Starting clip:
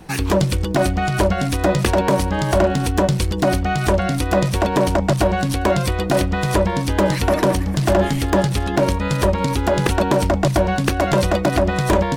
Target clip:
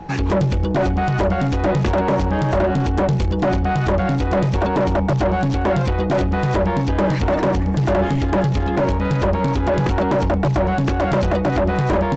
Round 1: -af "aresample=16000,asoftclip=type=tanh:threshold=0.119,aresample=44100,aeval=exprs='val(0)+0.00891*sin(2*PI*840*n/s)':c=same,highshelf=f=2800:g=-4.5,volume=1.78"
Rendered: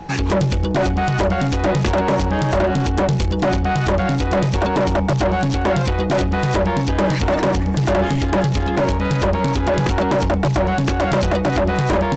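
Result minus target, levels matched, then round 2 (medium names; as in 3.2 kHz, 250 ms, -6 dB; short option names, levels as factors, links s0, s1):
4 kHz band +5.0 dB
-af "aresample=16000,asoftclip=type=tanh:threshold=0.119,aresample=44100,aeval=exprs='val(0)+0.00891*sin(2*PI*840*n/s)':c=same,highshelf=f=2800:g=-13,volume=1.78"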